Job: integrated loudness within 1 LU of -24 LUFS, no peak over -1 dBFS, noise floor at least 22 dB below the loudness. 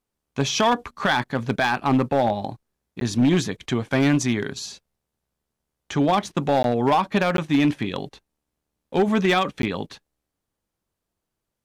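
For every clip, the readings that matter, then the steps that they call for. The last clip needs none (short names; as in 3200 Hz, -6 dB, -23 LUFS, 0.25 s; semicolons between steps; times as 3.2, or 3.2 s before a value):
clipped 1.3%; flat tops at -13.0 dBFS; dropouts 4; longest dropout 12 ms; loudness -22.5 LUFS; peak -13.0 dBFS; loudness target -24.0 LUFS
-> clip repair -13 dBFS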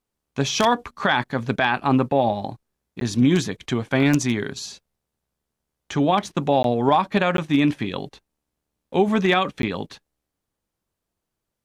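clipped 0.0%; dropouts 4; longest dropout 12 ms
-> interpolate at 3/6.63/7.37/9.62, 12 ms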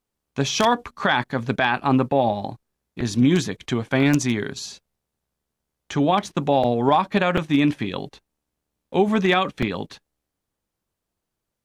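dropouts 0; loudness -21.5 LUFS; peak -4.0 dBFS; loudness target -24.0 LUFS
-> gain -2.5 dB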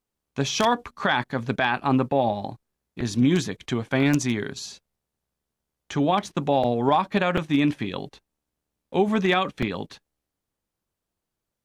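loudness -24.0 LUFS; peak -6.5 dBFS; noise floor -85 dBFS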